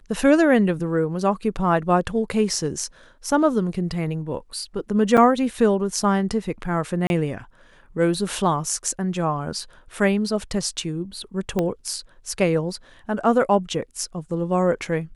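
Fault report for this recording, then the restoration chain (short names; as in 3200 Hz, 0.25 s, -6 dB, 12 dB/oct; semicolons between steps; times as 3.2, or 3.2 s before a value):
5.17–5.18 gap 6.2 ms
7.07–7.1 gap 31 ms
11.59 pop -10 dBFS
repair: de-click; interpolate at 5.17, 6.2 ms; interpolate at 7.07, 31 ms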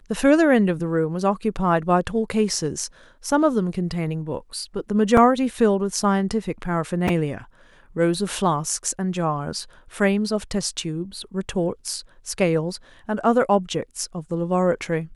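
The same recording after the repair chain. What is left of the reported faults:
11.59 pop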